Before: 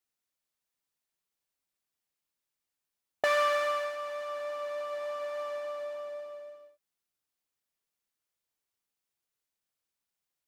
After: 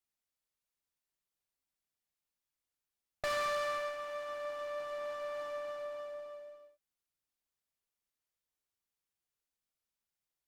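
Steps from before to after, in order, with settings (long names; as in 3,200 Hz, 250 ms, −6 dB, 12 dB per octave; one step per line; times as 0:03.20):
low-shelf EQ 73 Hz +10 dB
tube saturation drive 30 dB, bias 0.75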